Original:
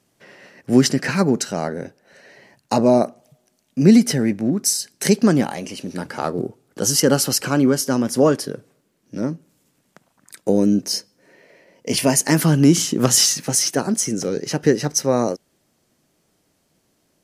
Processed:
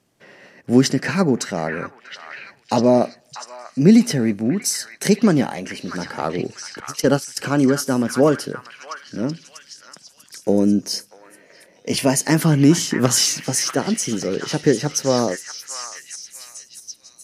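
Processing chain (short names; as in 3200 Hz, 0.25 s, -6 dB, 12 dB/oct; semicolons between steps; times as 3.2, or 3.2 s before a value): 6.8–7.37 gate -15 dBFS, range -33 dB; high shelf 6700 Hz -5 dB; on a send: delay with a stepping band-pass 0.642 s, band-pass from 1600 Hz, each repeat 0.7 oct, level -3.5 dB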